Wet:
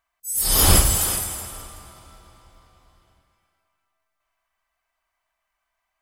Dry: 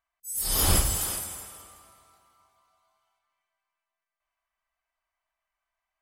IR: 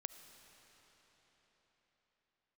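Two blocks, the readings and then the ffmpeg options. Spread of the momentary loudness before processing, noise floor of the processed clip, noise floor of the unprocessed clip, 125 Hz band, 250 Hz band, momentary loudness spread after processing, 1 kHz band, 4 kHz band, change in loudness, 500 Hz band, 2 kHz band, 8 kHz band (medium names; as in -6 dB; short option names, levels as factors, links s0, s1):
17 LU, -79 dBFS, under -85 dBFS, +7.5 dB, +7.5 dB, 19 LU, +7.5 dB, +7.5 dB, +7.0 dB, +7.5 dB, +7.5 dB, +7.5 dB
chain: -filter_complex "[0:a]asplit=2[s0][s1];[1:a]atrim=start_sample=2205[s2];[s1][s2]afir=irnorm=-1:irlink=0,volume=0.944[s3];[s0][s3]amix=inputs=2:normalize=0,volume=1.5"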